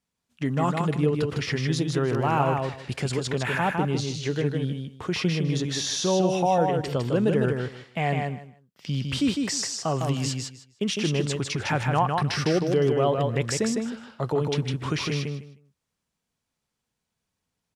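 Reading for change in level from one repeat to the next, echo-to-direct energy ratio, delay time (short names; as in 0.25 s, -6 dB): -14.5 dB, -4.0 dB, 0.155 s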